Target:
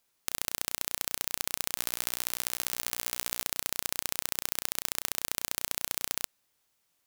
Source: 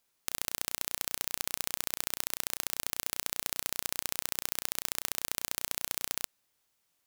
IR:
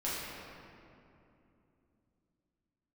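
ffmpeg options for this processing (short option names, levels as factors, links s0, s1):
-filter_complex "[0:a]asettb=1/sr,asplit=3[s0][s1][s2];[s0]atrim=end=1.774[s3];[s1]atrim=start=1.77:end=3.43,asetpts=PTS-STARTPTS,afade=t=in:d=0.004:c=qsin,afade=t=out:st=1.656:d=0.004:c=qsin,asplit=2[s4][s5];[s5]adelay=16,volume=0.316[s6];[s4][s6]amix=inputs=2:normalize=0,atrim=end_sample=73206[s7];[s2]atrim=start=3.426[s8];[s3][s7]acrossfade=d=0.004:c1=hsin:c2=qsin[s9];[s9][s8]acrossfade=d=0.004:c1=qsin:c2=hsin,volume=1.19"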